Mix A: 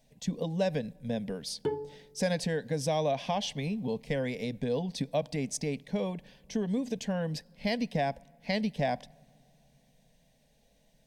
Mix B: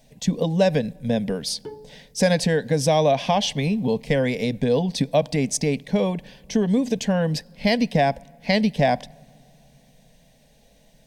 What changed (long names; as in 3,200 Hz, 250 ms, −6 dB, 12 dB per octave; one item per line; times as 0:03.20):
speech +10.5 dB
background −5.0 dB